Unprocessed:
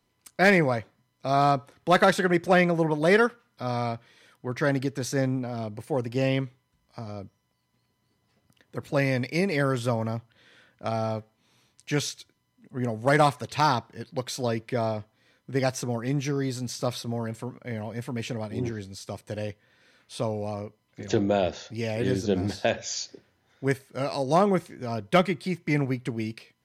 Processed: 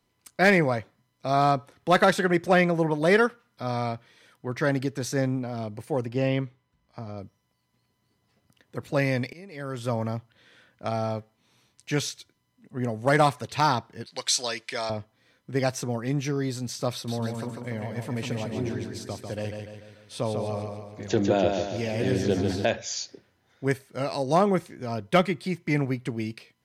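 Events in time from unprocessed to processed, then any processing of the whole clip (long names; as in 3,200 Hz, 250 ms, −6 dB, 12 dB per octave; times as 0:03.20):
0:06.06–0:07.18: high-shelf EQ 5,200 Hz −11 dB
0:09.33–0:09.97: fade in quadratic, from −21.5 dB
0:14.06–0:14.90: meter weighting curve ITU-R 468
0:16.93–0:22.65: repeating echo 146 ms, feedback 50%, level −5 dB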